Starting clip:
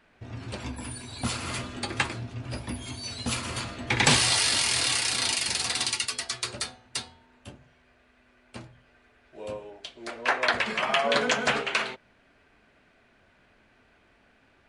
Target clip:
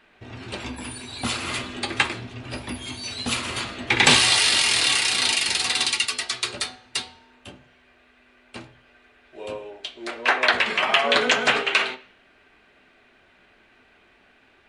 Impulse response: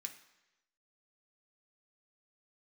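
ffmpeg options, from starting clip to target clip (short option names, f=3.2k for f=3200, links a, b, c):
-filter_complex "[0:a]asplit=2[a][b];[1:a]atrim=start_sample=2205,asetrate=70560,aresample=44100,lowpass=4.5k[c];[b][c]afir=irnorm=-1:irlink=0,volume=7dB[d];[a][d]amix=inputs=2:normalize=0,volume=2.5dB"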